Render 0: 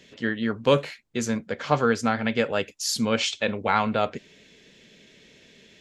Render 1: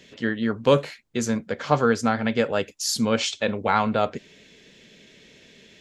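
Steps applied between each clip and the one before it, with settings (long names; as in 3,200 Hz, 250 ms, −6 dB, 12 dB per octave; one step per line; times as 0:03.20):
dynamic equaliser 2,500 Hz, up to −4 dB, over −39 dBFS, Q 1.2
level +2 dB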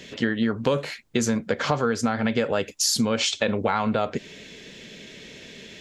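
in parallel at +1.5 dB: brickwall limiter −15.5 dBFS, peak gain reduction 11 dB
on the sum: downward compressor 6 to 1, threshold −21 dBFS, peak gain reduction 11.5 dB
level +1.5 dB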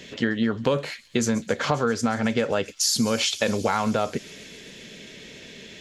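delay with a high-pass on its return 133 ms, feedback 83%, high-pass 5,100 Hz, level −13.5 dB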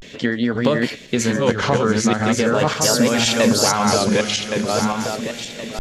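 feedback delay that plays each chunk backwards 545 ms, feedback 58%, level −0.5 dB
pitch vibrato 0.41 Hz 94 cents
level +3.5 dB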